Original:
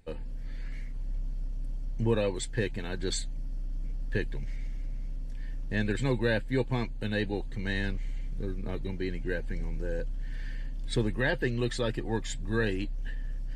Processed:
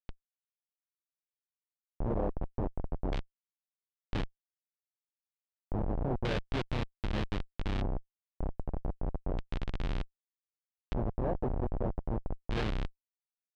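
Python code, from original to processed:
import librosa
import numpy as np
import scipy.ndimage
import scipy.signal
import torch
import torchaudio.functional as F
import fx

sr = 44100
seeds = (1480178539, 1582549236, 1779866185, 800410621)

y = fx.schmitt(x, sr, flips_db=-26.0)
y = fx.filter_lfo_lowpass(y, sr, shape='square', hz=0.32, low_hz=750.0, high_hz=3500.0, q=1.6)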